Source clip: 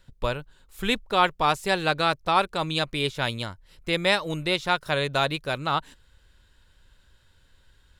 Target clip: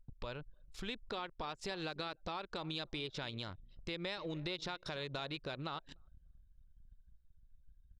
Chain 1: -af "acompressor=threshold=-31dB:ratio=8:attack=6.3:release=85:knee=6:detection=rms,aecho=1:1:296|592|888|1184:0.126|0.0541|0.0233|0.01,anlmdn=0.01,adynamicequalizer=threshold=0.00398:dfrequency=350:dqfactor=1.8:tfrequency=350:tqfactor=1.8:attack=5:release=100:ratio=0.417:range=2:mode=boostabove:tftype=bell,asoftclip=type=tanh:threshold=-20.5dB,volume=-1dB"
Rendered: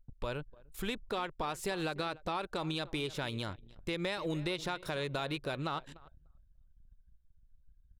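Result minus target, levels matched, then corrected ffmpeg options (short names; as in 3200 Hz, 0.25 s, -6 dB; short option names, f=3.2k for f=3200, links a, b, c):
compressor: peak gain reduction -7 dB; 4000 Hz band -3.0 dB
-af "acompressor=threshold=-39dB:ratio=8:attack=6.3:release=85:knee=6:detection=rms,aecho=1:1:296|592|888|1184:0.126|0.0541|0.0233|0.01,anlmdn=0.01,adynamicequalizer=threshold=0.00398:dfrequency=350:dqfactor=1.8:tfrequency=350:tqfactor=1.8:attack=5:release=100:ratio=0.417:range=2:mode=boostabove:tftype=bell,lowpass=f=5.1k:t=q:w=2.1,asoftclip=type=tanh:threshold=-20.5dB,volume=-1dB"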